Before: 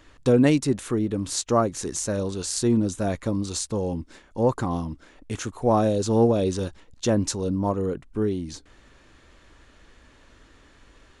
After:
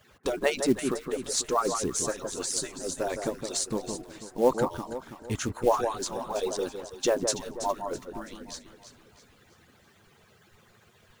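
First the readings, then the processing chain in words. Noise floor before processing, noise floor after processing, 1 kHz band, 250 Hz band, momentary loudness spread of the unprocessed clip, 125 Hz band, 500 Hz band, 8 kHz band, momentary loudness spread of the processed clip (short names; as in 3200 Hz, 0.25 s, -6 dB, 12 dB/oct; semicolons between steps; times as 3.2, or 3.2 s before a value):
-55 dBFS, -61 dBFS, -1.5 dB, -10.0 dB, 13 LU, -14.5 dB, -4.0 dB, 0.0 dB, 13 LU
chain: median-filter separation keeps percussive; companded quantiser 6-bit; echo with dull and thin repeats by turns 0.164 s, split 1600 Hz, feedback 63%, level -6.5 dB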